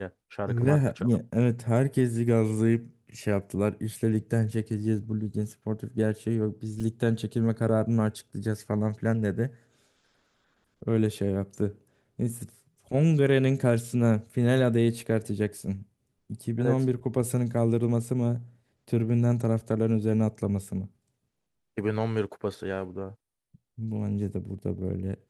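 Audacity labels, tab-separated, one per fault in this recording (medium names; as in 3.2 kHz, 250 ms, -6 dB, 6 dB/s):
6.800000	6.800000	dropout 3.2 ms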